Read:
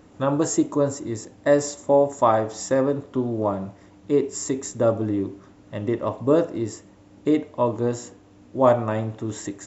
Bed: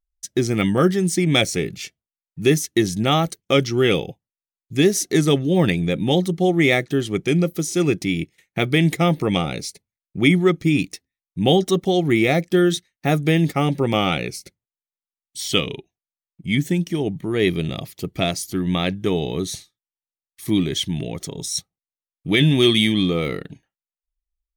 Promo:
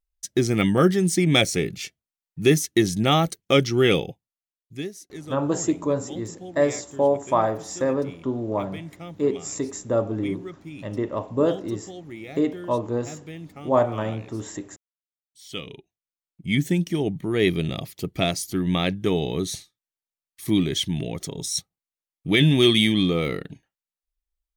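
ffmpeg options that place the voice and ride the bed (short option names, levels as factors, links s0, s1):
-filter_complex "[0:a]adelay=5100,volume=0.75[s0];[1:a]volume=8.41,afade=t=out:st=3.97:d=0.95:silence=0.1,afade=t=in:st=15.39:d=1.24:silence=0.105925[s1];[s0][s1]amix=inputs=2:normalize=0"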